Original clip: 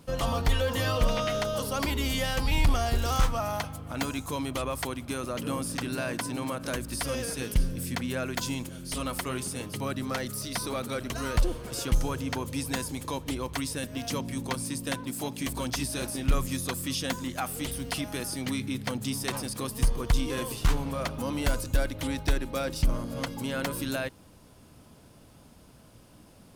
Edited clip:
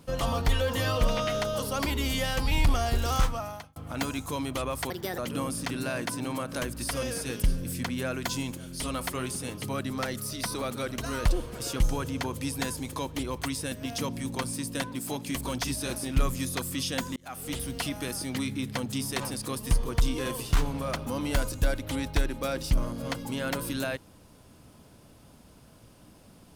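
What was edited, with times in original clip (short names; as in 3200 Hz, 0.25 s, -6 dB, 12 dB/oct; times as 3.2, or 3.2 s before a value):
3.19–3.76 fade out
4.9–5.3 speed 142%
17.28–17.66 fade in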